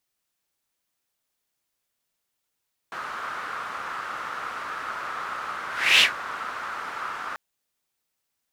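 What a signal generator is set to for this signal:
pass-by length 4.44 s, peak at 0:03.09, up 0.34 s, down 0.12 s, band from 1,300 Hz, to 2,900 Hz, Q 4, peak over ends 18 dB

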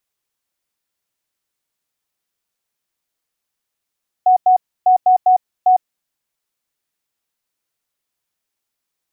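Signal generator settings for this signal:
Morse code "ISE" 12 words per minute 739 Hz −7.5 dBFS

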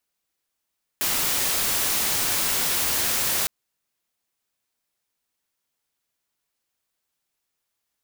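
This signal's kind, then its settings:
noise white, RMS −23.5 dBFS 2.46 s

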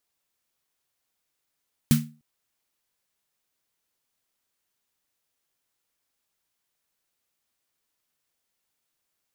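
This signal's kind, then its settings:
synth snare length 0.30 s, tones 150 Hz, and 230 Hz, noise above 1,200 Hz, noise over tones −8.5 dB, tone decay 0.34 s, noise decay 0.24 s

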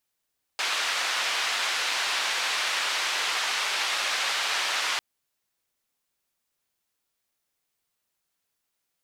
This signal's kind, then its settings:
band-limited noise 870–3,800 Hz, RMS −27.5 dBFS 4.40 s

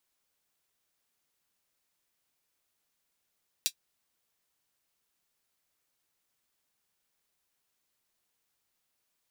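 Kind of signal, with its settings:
closed synth hi-hat, high-pass 3,600 Hz, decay 0.08 s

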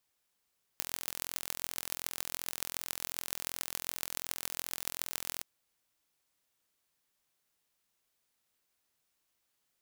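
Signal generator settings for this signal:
impulse train 42.7 per second, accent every 6, −5.5 dBFS 4.63 s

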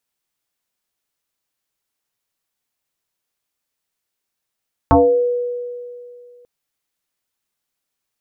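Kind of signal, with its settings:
two-operator FM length 1.54 s, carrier 487 Hz, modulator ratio 0.42, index 3.4, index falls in 0.46 s exponential, decay 2.44 s, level −6.5 dB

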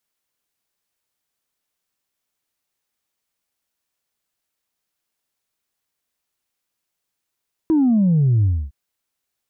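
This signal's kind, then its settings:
bass drop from 330 Hz, over 1.01 s, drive 0 dB, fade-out 0.27 s, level −13 dB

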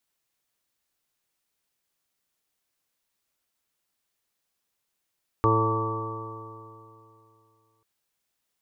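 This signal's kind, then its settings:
stiff-string partials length 2.39 s, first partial 110 Hz, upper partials −16/−2.5/−1.5/−11/−19/−19/−4/−12.5/1.5 dB, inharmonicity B 0.00093, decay 2.75 s, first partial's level −22.5 dB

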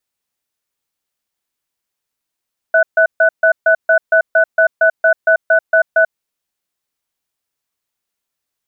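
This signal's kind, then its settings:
tone pair in a cadence 650 Hz, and 1,490 Hz, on 0.09 s, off 0.14 s, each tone −10 dBFS 3.38 s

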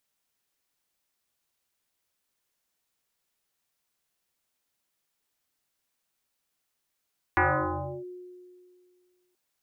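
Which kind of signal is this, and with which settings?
two-operator FM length 1.98 s, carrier 361 Hz, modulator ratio 0.62, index 7.4, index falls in 0.67 s linear, decay 2.14 s, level −18 dB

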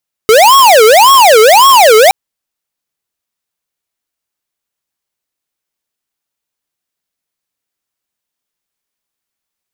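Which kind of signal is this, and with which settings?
siren wail 428–1,100 Hz 1.8 per second square −4 dBFS 1.82 s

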